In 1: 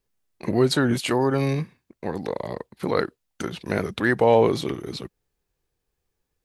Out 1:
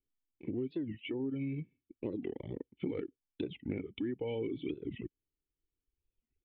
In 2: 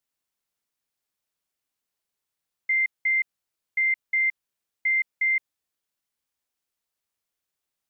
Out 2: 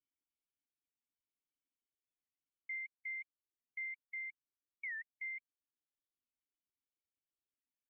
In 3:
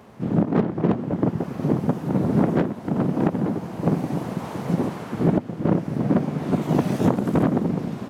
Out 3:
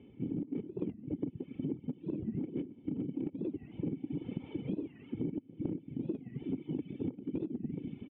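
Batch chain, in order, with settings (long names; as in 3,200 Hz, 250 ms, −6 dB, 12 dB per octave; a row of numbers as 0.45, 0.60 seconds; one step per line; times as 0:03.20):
formant resonators in series i
high-frequency loss of the air 51 metres
speech leveller within 5 dB 0.5 s
comb filter 2.3 ms, depth 53%
reverb reduction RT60 1.4 s
downward compressor 10 to 1, threshold −35 dBFS
wow of a warped record 45 rpm, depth 250 cents
level +2.5 dB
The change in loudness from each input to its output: −16.0, −20.0, −16.0 LU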